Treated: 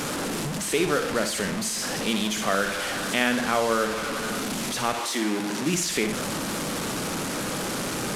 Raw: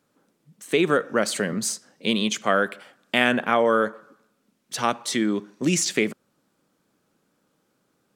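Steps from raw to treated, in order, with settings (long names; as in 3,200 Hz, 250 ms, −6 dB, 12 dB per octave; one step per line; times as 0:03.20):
linear delta modulator 64 kbit/s, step −19.5 dBFS
0:04.92–0:05.73: high-pass filter 320 Hz → 96 Hz 24 dB per octave
flutter between parallel walls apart 10.5 metres, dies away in 0.4 s
level −4 dB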